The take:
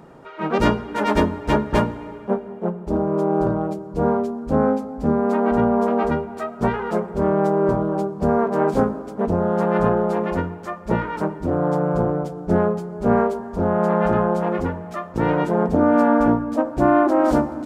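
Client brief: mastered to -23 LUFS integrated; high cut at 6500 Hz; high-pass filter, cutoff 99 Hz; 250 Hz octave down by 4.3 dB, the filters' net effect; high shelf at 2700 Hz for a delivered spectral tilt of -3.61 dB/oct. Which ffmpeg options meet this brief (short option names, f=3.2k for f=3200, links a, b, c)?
-af "highpass=99,lowpass=6.5k,equalizer=f=250:t=o:g=-5.5,highshelf=f=2.7k:g=4,volume=-0.5dB"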